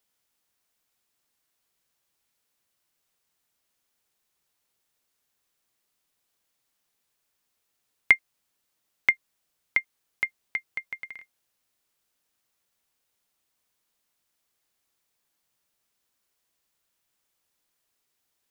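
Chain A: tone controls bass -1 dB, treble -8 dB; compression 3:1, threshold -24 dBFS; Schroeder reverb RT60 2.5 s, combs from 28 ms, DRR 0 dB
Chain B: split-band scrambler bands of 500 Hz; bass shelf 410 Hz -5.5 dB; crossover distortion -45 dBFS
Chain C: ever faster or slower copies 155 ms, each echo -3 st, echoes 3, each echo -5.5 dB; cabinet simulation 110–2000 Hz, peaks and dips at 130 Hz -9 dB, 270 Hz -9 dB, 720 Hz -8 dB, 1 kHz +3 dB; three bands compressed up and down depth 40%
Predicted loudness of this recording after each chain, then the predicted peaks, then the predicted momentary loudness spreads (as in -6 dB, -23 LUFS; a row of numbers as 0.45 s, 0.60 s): -32.0 LUFS, -27.0 LUFS, -36.0 LUFS; -5.5 dBFS, -3.0 dBFS, -8.5 dBFS; 14 LU, 18 LU, 18 LU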